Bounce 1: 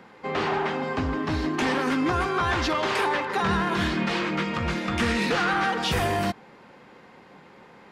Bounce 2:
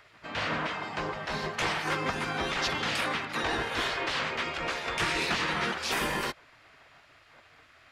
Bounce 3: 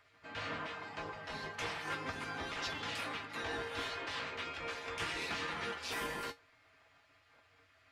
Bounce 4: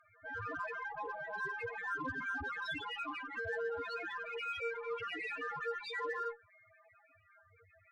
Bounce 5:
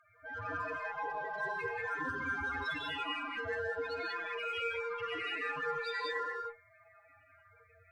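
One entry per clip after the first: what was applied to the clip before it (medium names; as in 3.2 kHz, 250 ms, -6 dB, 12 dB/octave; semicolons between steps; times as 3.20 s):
spectral gate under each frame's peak -10 dB weak
feedback comb 93 Hz, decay 0.16 s, harmonics odd, mix 80%; trim -2.5 dB
peak limiter -33 dBFS, peak gain reduction 6 dB; loudest bins only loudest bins 4; Chebyshev shaper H 8 -34 dB, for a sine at -38.5 dBFS; trim +10 dB
gated-style reverb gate 220 ms rising, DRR 0 dB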